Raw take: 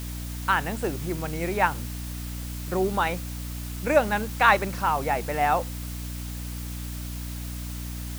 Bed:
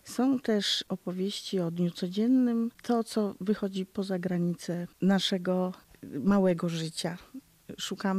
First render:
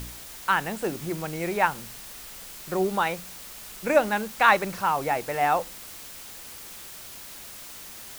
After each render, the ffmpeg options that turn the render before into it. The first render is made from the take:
-af "bandreject=f=60:t=h:w=4,bandreject=f=120:t=h:w=4,bandreject=f=180:t=h:w=4,bandreject=f=240:t=h:w=4,bandreject=f=300:t=h:w=4"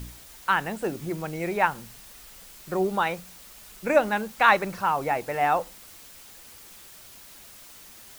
-af "afftdn=nr=6:nf=-42"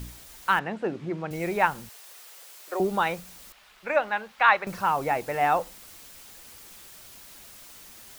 -filter_complex "[0:a]asettb=1/sr,asplit=3[a][b][c];[a]atrim=end=0.594[d];[b]atrim=start=0.59:end=1.31,asetpts=PTS-STARTPTS,afade=t=in:d=0.004:c=qsin,afade=t=out:st=0.716:d=0.004:c=qsin,highpass=120,lowpass=3k[e];[c]atrim=start=1.306[f];[d][e]acrossfade=d=0.004:c1=hsin:c2=qsin[g];[g][f]acrossfade=d=0.004:c1=qsin:c2=hsin,asettb=1/sr,asplit=3[h][i][j];[h]atrim=end=1.894[k];[i]atrim=start=1.89:end=2.8,asetpts=PTS-STARTPTS,afade=t=in:d=0.004:c=qsin,afade=t=out:st=0.906:d=0.004:c=qsin,highpass=f=420:w=0.5412,highpass=f=420:w=1.3066[l];[j]atrim=start=2.796[m];[k][l]acrossfade=d=0.004:c1=hsin:c2=qsin[n];[n][m]acrossfade=d=0.004:c1=qsin:c2=hsin,asettb=1/sr,asplit=3[o][p][q];[o]atrim=end=3.524[r];[p]atrim=start=3.52:end=4.67,asetpts=PTS-STARTPTS,afade=t=in:d=0.004:c=qsin,afade=t=out:st=1.146:d=0.004:c=qsin,acrossover=split=590 4100:gain=0.2 1 0.141[s][t][u];[s][t][u]amix=inputs=3:normalize=0[v];[q]atrim=start=4.666[w];[r][v]acrossfade=d=0.004:c1=hsin:c2=qsin[x];[x][w]acrossfade=d=0.004:c1=qsin:c2=hsin"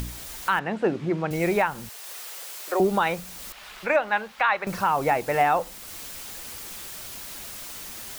-filter_complex "[0:a]asplit=2[a][b];[b]acompressor=mode=upward:threshold=-33dB:ratio=2.5,volume=-0.5dB[c];[a][c]amix=inputs=2:normalize=0,alimiter=limit=-11.5dB:level=0:latency=1:release=224"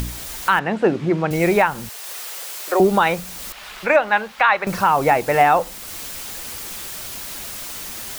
-af "volume=6.5dB"

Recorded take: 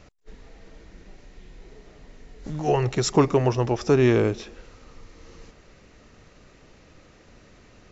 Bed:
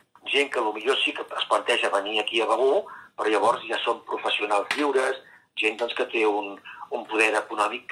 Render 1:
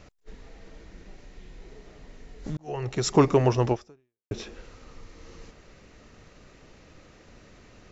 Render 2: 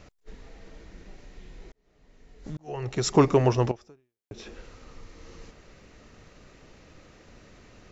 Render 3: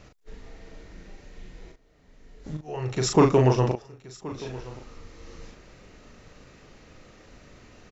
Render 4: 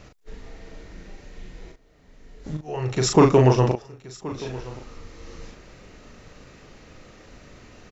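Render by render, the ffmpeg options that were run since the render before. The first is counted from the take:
-filter_complex "[0:a]asplit=3[a][b][c];[a]atrim=end=2.57,asetpts=PTS-STARTPTS,afade=t=out:st=2.566:d=0.004:c=hsin[d];[b]atrim=start=2.57:end=4.31,asetpts=PTS-STARTPTS,afade=t=in:d=0.65,afade=t=out:st=1.15:d=0.59:c=exp[e];[c]atrim=start=4.31,asetpts=PTS-STARTPTS,afade=t=in:d=0.004:c=hsin[f];[d][e][f]concat=n=3:v=0:a=1"
-filter_complex "[0:a]asettb=1/sr,asplit=3[a][b][c];[a]atrim=end=3.714[d];[b]atrim=start=3.71:end=4.46,asetpts=PTS-STARTPTS,afade=t=in:d=0.004:c=qsin,afade=t=out:st=0.746:d=0.004:c=qsin,acompressor=threshold=-41dB:ratio=2.5:attack=3.2:release=140:knee=1:detection=peak[e];[c]atrim=start=4.456[f];[d][e]acrossfade=d=0.004:c1=hsin:c2=qsin[g];[g][f]acrossfade=d=0.004:c1=qsin:c2=hsin,asplit=2[h][i];[h]atrim=end=1.72,asetpts=PTS-STARTPTS,afade=t=out:st=1.716:d=0.004:c=hsin[j];[i]atrim=start=1.72,asetpts=PTS-STARTPTS,afade=t=in:d=1.28[k];[j][k]concat=n=2:v=0:a=1"
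-filter_complex "[0:a]asplit=2[a][b];[b]adelay=39,volume=-4dB[c];[a][c]amix=inputs=2:normalize=0,aecho=1:1:1075:0.119"
-af "volume=3.5dB,alimiter=limit=-3dB:level=0:latency=1"

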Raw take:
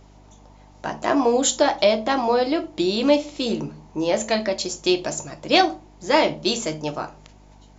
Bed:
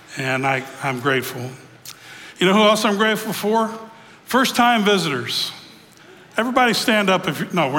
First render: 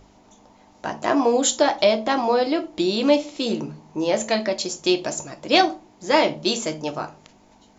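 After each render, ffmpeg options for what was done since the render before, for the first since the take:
-af "bandreject=f=50:t=h:w=4,bandreject=f=100:t=h:w=4,bandreject=f=150:t=h:w=4"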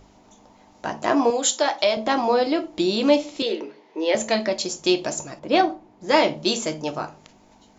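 -filter_complex "[0:a]asettb=1/sr,asplit=3[a][b][c];[a]atrim=end=1.304[d];[b]atrim=start=1.3:end=1.97,asetpts=PTS-STARTPTS,afade=t=in:d=0.004:c=qsin,afade=t=out:st=0.666:d=0.004:c=qsin,highpass=f=650:p=1[e];[c]atrim=start=1.966[f];[d][e]acrossfade=d=0.004:c1=hsin:c2=qsin[g];[g][f]acrossfade=d=0.004:c1=qsin:c2=hsin,asettb=1/sr,asplit=3[h][i][j];[h]atrim=end=3.424[k];[i]atrim=start=3.42:end=4.15,asetpts=PTS-STARTPTS,afade=t=in:d=0.004:c=qsin,afade=t=out:st=0.726:d=0.004:c=qsin,highpass=f=330:w=0.5412,highpass=f=330:w=1.3066,equalizer=f=430:t=q:w=4:g=5,equalizer=f=770:t=q:w=4:g=-5,equalizer=f=1.2k:t=q:w=4:g=-5,equalizer=f=2k:t=q:w=4:g=8,equalizer=f=3.3k:t=q:w=4:g=4,lowpass=f=4.9k:w=0.5412,lowpass=f=4.9k:w=1.3066[l];[j]atrim=start=4.146[m];[k][l]acrossfade=d=0.004:c1=hsin:c2=qsin[n];[n][m]acrossfade=d=0.004:c1=qsin:c2=hsin,asettb=1/sr,asplit=3[o][p][q];[o]atrim=end=5.394[r];[p]atrim=start=5.39:end=6.09,asetpts=PTS-STARTPTS,afade=t=in:d=0.004:c=qsin,afade=t=out:st=0.696:d=0.004:c=qsin,lowpass=f=1.5k:p=1[s];[q]atrim=start=6.086[t];[r][s]acrossfade=d=0.004:c1=hsin:c2=qsin[u];[u][t]acrossfade=d=0.004:c1=qsin:c2=hsin"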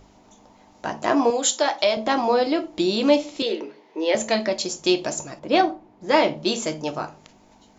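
-filter_complex "[0:a]asettb=1/sr,asplit=3[a][b][c];[a]atrim=end=5.704[d];[b]atrim=start=5.7:end=6.58,asetpts=PTS-STARTPTS,afade=t=in:d=0.004:c=qsin,afade=t=out:st=0.876:d=0.004:c=qsin,highshelf=f=6.4k:g=-9.5[e];[c]atrim=start=6.576[f];[d][e]acrossfade=d=0.004:c1=hsin:c2=qsin[g];[g][f]acrossfade=d=0.004:c1=qsin:c2=hsin"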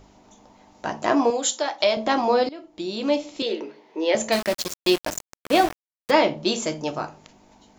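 -filter_complex "[0:a]asettb=1/sr,asplit=3[a][b][c];[a]atrim=end=4.324[d];[b]atrim=start=4.32:end=6.11,asetpts=PTS-STARTPTS,afade=t=in:d=0.004:c=qsin,afade=t=out:st=1.786:d=0.004:c=qsin,aeval=exprs='val(0)*gte(abs(val(0)),0.0596)':c=same[e];[c]atrim=start=6.106[f];[d][e]acrossfade=d=0.004:c1=hsin:c2=qsin[g];[g][f]acrossfade=d=0.004:c1=qsin:c2=hsin,asplit=3[h][i][j];[h]atrim=end=1.8,asetpts=PTS-STARTPTS,afade=t=out:st=1.16:d=0.64:silence=0.473151[k];[i]atrim=start=1.8:end=2.49,asetpts=PTS-STARTPTS,afade=t=in:d=0.004:c=hsin:silence=0.473151,afade=t=out:st=0.686:d=0.004:c=hsin:silence=0.105925[l];[j]atrim=start=2.49,asetpts=PTS-STARTPTS,afade=t=in:d=1.18:silence=0.105925[m];[k][l][m]concat=n=3:v=0:a=1"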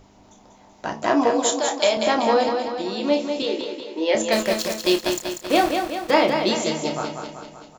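-filter_complex "[0:a]asplit=2[a][b];[b]adelay=31,volume=-9dB[c];[a][c]amix=inputs=2:normalize=0,asplit=2[d][e];[e]aecho=0:1:191|382|573|764|955|1146|1337:0.501|0.276|0.152|0.0834|0.0459|0.0252|0.0139[f];[d][f]amix=inputs=2:normalize=0"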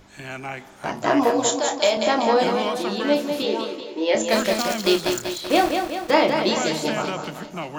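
-filter_complex "[1:a]volume=-13dB[a];[0:a][a]amix=inputs=2:normalize=0"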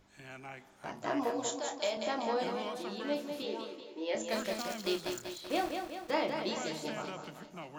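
-af "volume=-14.5dB"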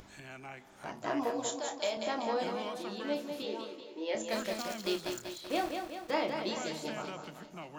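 -af "acompressor=mode=upward:threshold=-45dB:ratio=2.5"

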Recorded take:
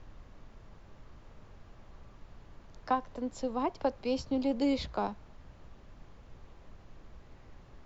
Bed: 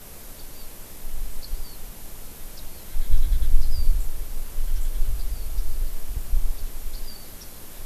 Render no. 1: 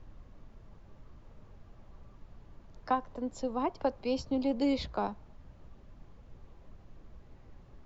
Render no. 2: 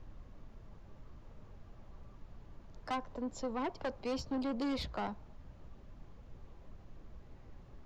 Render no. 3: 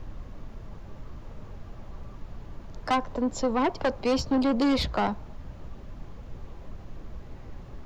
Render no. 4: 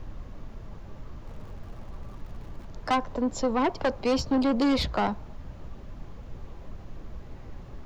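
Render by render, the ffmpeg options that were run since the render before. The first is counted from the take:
-af "afftdn=nr=6:nf=-56"
-af "asoftclip=type=tanh:threshold=-31.5dB"
-af "volume=12dB"
-filter_complex "[0:a]asettb=1/sr,asplit=3[a][b][c];[a]atrim=end=1.274[d];[b]atrim=start=1.27:end=2.66,asetpts=PTS-STARTPTS,afade=t=in:d=0.004:c=qsin,afade=t=out:st=1.386:d=0.004:c=qsin,aeval=exprs='val(0)+0.5*0.00251*sgn(val(0))':c=same[e];[c]atrim=start=2.656[f];[d][e]acrossfade=d=0.004:c1=hsin:c2=qsin[g];[g][f]acrossfade=d=0.004:c1=qsin:c2=hsin"

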